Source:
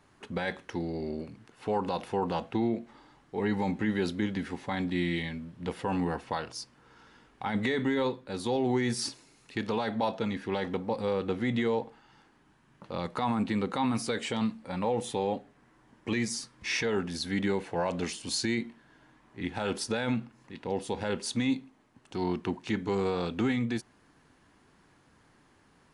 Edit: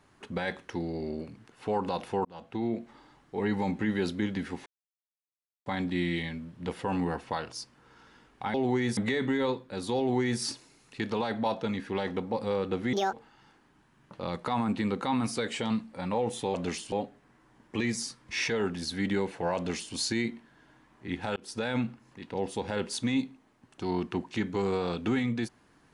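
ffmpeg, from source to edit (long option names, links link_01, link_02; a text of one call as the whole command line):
ffmpeg -i in.wav -filter_complex "[0:a]asplit=10[link_01][link_02][link_03][link_04][link_05][link_06][link_07][link_08][link_09][link_10];[link_01]atrim=end=2.25,asetpts=PTS-STARTPTS,afade=type=out:start_time=2.246:duration=0.004:curve=hsin[link_11];[link_02]atrim=start=2.25:end=4.66,asetpts=PTS-STARTPTS,afade=type=in:duration=0.54,afade=type=out:start_time=2.406:duration=0.004:curve=hsin,apad=pad_dur=1[link_12];[link_03]atrim=start=4.66:end=7.542,asetpts=PTS-STARTPTS,afade=type=in:duration=0.004:curve=hsin[link_13];[link_04]atrim=start=8.548:end=8.982[link_14];[link_05]atrim=start=7.538:end=11.504[link_15];[link_06]atrim=start=11.5:end=11.84,asetpts=PTS-STARTPTS,asetrate=74529,aresample=44100,atrim=end_sample=8872,asetpts=PTS-STARTPTS[link_16];[link_07]atrim=start=11.836:end=15.252[link_17];[link_08]atrim=start=17.888:end=18.272[link_18];[link_09]atrim=start=15.248:end=19.69,asetpts=PTS-STARTPTS,afade=type=out:start_time=4.438:duration=0.004:curve=hsin[link_19];[link_10]atrim=start=19.69,asetpts=PTS-STARTPTS,afade=type=in:duration=0.31[link_20];[link_11][link_12][link_13]concat=n=3:v=0:a=1[link_21];[link_21][link_14]acrossfade=duration=0.004:curve1=hsin:curve2=hsin[link_22];[link_22][link_15]acrossfade=duration=0.004:curve1=hsin:curve2=hsin[link_23];[link_23][link_16]acrossfade=duration=0.004:curve1=hsin:curve2=hsin[link_24];[link_24][link_17]acrossfade=duration=0.004:curve1=hsin:curve2=hsin[link_25];[link_25][link_18]acrossfade=duration=0.004:curve1=hsin:curve2=hsin[link_26];[link_19][link_20]concat=n=2:v=0:a=1[link_27];[link_26][link_27]acrossfade=duration=0.004:curve1=hsin:curve2=hsin" out.wav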